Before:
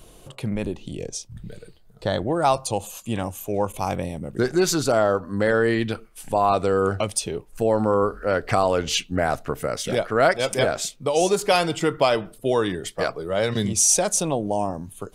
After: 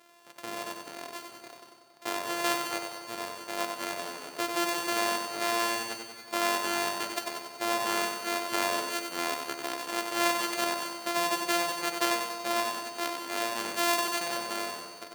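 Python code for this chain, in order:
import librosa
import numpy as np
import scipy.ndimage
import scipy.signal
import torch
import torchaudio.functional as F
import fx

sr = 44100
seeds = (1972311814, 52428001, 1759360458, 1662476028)

y = np.r_[np.sort(x[:len(x) // 128 * 128].reshape(-1, 128), axis=1).ravel(), x[len(x) // 128 * 128:]]
y = scipy.signal.sosfilt(scipy.signal.butter(2, 510.0, 'highpass', fs=sr, output='sos'), y)
y = fx.echo_feedback(y, sr, ms=94, feedback_pct=58, wet_db=-6.0)
y = fx.rev_schroeder(y, sr, rt60_s=2.2, comb_ms=32, drr_db=11.5)
y = y * librosa.db_to_amplitude(-6.5)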